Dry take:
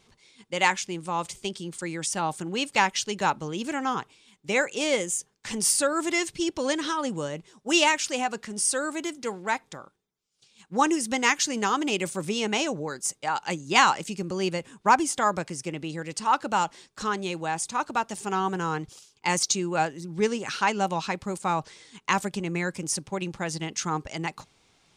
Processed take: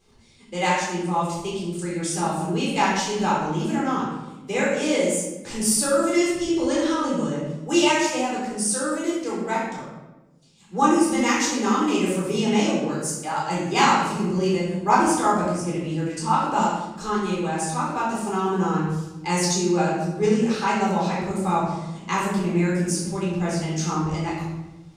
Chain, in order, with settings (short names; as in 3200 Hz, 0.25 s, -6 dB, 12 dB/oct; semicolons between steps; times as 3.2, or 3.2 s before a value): bell 2400 Hz -6.5 dB 2.9 oct; shoebox room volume 520 m³, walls mixed, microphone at 3.9 m; gain -3.5 dB